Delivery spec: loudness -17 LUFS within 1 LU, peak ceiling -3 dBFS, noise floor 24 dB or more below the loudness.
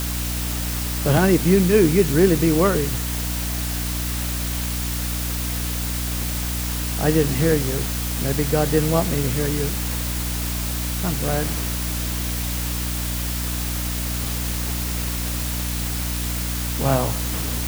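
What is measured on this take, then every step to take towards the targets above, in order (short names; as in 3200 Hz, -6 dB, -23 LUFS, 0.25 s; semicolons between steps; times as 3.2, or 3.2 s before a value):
hum 60 Hz; harmonics up to 300 Hz; hum level -24 dBFS; noise floor -25 dBFS; noise floor target -46 dBFS; loudness -22.0 LUFS; peak -3.5 dBFS; loudness target -17.0 LUFS
-> notches 60/120/180/240/300 Hz; noise print and reduce 21 dB; gain +5 dB; limiter -3 dBFS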